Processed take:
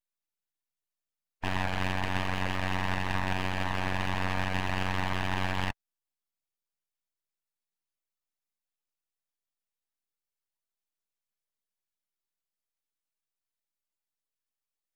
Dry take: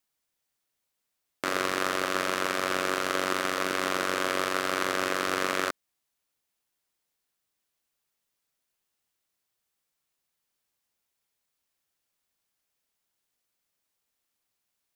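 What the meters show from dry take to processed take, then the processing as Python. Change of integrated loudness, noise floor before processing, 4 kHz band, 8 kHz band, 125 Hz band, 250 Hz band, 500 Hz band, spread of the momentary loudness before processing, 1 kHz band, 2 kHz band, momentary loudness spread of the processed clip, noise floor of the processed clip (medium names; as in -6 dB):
-3.5 dB, -82 dBFS, -4.5 dB, -12.5 dB, +14.0 dB, -0.5 dB, -8.5 dB, 2 LU, -3.5 dB, -3.5 dB, 2 LU, under -85 dBFS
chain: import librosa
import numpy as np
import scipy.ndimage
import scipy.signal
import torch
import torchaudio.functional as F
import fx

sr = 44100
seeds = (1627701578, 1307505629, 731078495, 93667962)

y = fx.spec_topn(x, sr, count=32)
y = np.abs(y)
y = y * librosa.db_to_amplitude(1.5)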